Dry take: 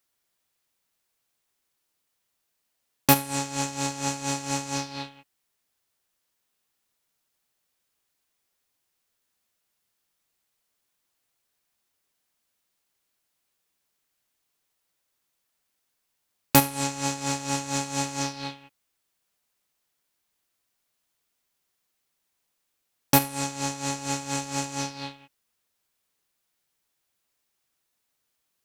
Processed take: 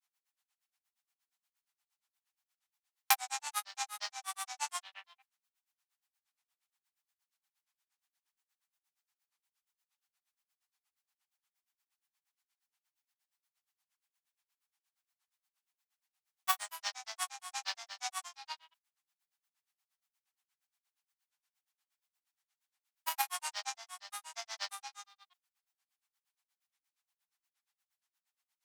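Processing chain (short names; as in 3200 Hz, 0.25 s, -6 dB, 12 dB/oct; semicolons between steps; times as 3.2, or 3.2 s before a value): grains, grains 8.5/s, pitch spread up and down by 7 st; elliptic high-pass 750 Hz, stop band 40 dB; gain -3.5 dB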